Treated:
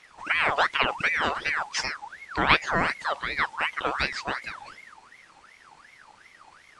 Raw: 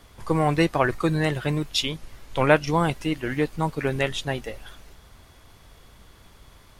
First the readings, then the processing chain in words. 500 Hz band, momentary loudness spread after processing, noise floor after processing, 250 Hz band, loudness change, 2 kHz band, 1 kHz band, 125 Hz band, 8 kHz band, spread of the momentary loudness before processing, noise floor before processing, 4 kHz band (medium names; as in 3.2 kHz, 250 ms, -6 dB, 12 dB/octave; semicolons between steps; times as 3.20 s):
-9.0 dB, 12 LU, -56 dBFS, -12.5 dB, -1.5 dB, +4.5 dB, +1.0 dB, -15.0 dB, -2.0 dB, 11 LU, -53 dBFS, 0.0 dB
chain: knee-point frequency compression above 3.5 kHz 1.5:1; ring modulator with a swept carrier 1.5 kHz, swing 45%, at 2.7 Hz